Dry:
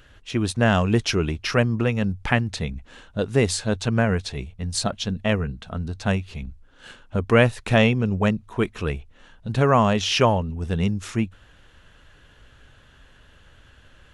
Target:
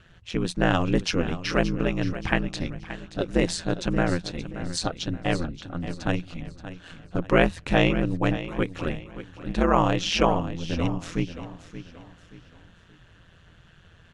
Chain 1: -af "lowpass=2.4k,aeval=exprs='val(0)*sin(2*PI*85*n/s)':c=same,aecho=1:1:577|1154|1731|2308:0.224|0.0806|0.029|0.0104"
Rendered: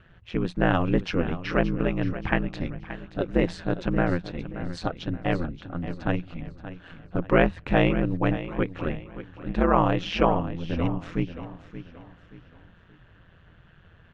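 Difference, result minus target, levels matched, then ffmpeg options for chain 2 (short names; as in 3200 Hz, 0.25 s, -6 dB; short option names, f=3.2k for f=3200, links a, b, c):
8000 Hz band -16.5 dB
-af "lowpass=7.9k,aeval=exprs='val(0)*sin(2*PI*85*n/s)':c=same,aecho=1:1:577|1154|1731|2308:0.224|0.0806|0.029|0.0104"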